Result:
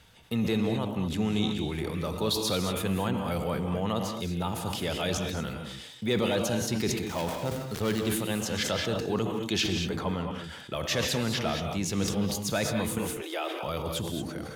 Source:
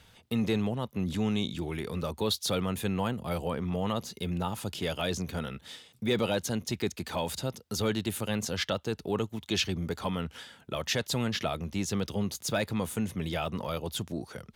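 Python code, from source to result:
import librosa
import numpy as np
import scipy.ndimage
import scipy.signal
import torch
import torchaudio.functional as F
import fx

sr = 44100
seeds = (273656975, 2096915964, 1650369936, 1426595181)

y = fx.dead_time(x, sr, dead_ms=0.14, at=(7.05, 8.0))
y = fx.high_shelf(y, sr, hz=4100.0, db=-11.0, at=(9.91, 10.44))
y = fx.steep_highpass(y, sr, hz=300.0, slope=96, at=(12.98, 13.63))
y = fx.rev_gated(y, sr, seeds[0], gate_ms=250, shape='rising', drr_db=4.5)
y = fx.sustainer(y, sr, db_per_s=43.0)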